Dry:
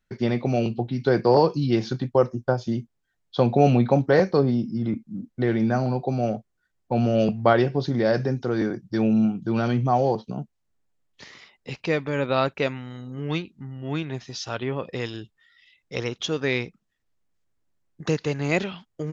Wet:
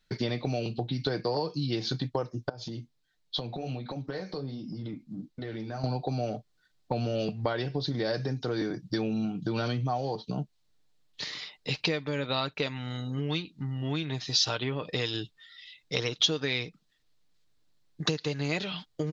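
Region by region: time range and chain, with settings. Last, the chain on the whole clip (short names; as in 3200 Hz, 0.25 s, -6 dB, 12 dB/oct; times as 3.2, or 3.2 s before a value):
2.49–5.84 compressor 10:1, threshold -31 dBFS + flange 1.4 Hz, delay 3.1 ms, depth 8.6 ms, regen -50%
whole clip: comb 6.6 ms, depth 38%; compressor 6:1, threshold -30 dBFS; bell 4100 Hz +12 dB 0.9 oct; gain +2 dB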